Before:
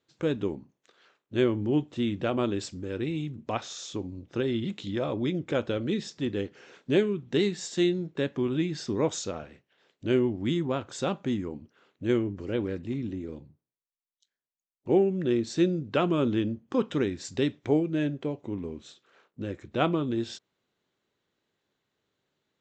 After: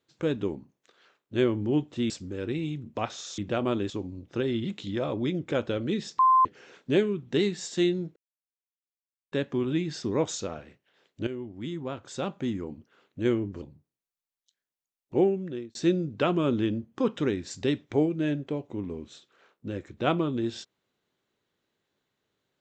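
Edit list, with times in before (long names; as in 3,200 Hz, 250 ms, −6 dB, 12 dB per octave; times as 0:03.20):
0:02.10–0:02.62: move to 0:03.90
0:06.19–0:06.45: beep over 1,040 Hz −16 dBFS
0:08.16: splice in silence 1.16 s
0:10.11–0:11.56: fade in, from −14 dB
0:12.46–0:13.36: remove
0:14.94–0:15.49: fade out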